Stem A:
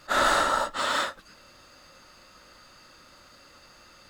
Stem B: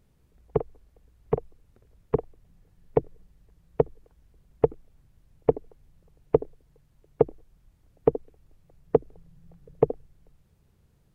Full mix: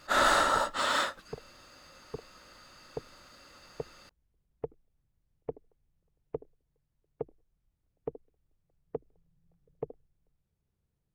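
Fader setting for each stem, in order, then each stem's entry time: -2.0 dB, -17.0 dB; 0.00 s, 0.00 s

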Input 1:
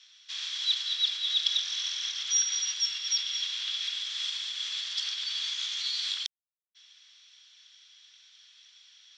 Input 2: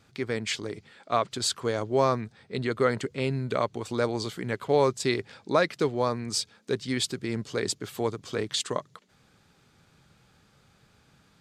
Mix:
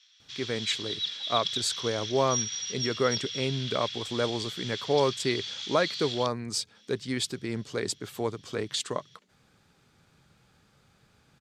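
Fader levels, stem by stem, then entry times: -4.5 dB, -2.0 dB; 0.00 s, 0.20 s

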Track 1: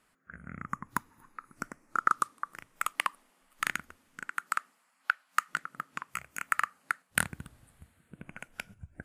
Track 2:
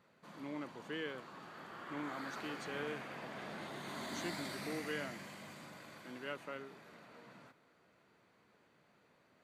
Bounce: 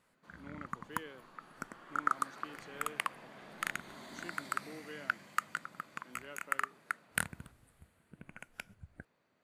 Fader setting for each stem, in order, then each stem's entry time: -5.5 dB, -6.5 dB; 0.00 s, 0.00 s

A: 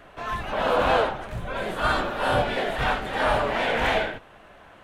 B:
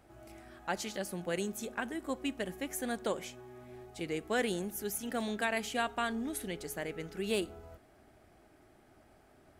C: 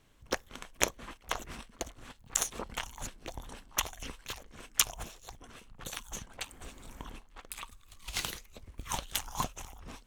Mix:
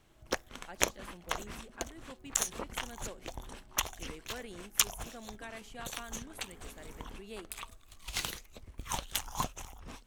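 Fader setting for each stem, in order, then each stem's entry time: mute, -13.5 dB, -0.5 dB; mute, 0.00 s, 0.00 s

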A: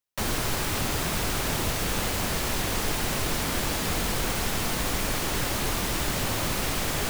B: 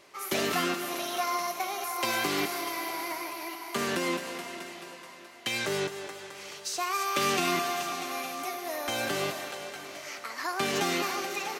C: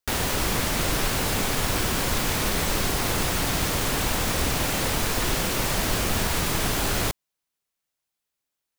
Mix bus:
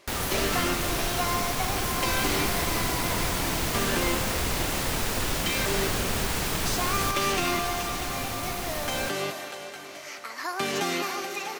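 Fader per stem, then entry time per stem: -6.0 dB, +0.5 dB, -4.5 dB; 2.00 s, 0.00 s, 0.00 s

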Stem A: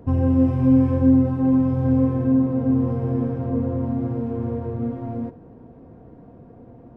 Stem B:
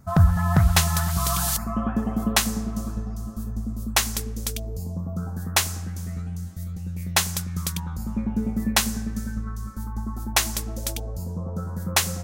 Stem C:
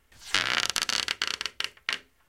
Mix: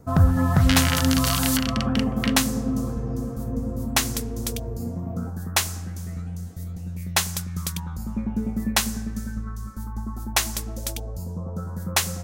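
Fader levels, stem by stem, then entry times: -7.5 dB, -1.0 dB, -1.0 dB; 0.00 s, 0.00 s, 0.35 s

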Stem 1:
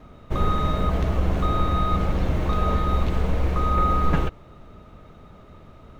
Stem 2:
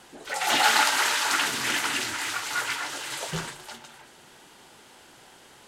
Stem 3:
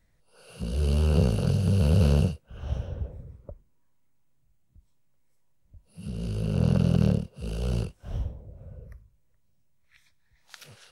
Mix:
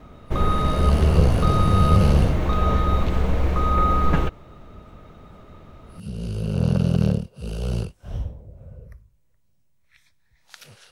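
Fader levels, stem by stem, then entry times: +1.5 dB, mute, +2.5 dB; 0.00 s, mute, 0.00 s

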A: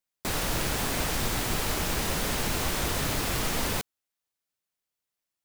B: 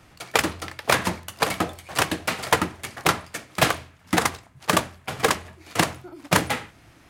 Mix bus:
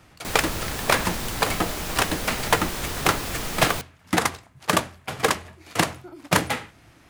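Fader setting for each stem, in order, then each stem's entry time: -1.5 dB, -0.5 dB; 0.00 s, 0.00 s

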